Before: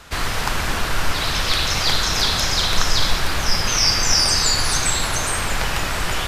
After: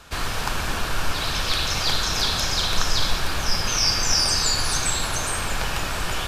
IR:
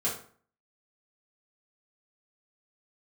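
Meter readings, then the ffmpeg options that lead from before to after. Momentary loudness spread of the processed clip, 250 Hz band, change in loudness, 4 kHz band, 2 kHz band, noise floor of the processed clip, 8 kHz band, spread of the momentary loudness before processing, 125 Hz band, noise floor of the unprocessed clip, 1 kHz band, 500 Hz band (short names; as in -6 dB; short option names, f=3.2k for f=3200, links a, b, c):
8 LU, -3.5 dB, -3.5 dB, -3.5 dB, -4.5 dB, -27 dBFS, -3.5 dB, 7 LU, -3.5 dB, -23 dBFS, -3.5 dB, -3.5 dB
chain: -af "bandreject=f=2k:w=11,volume=-3.5dB"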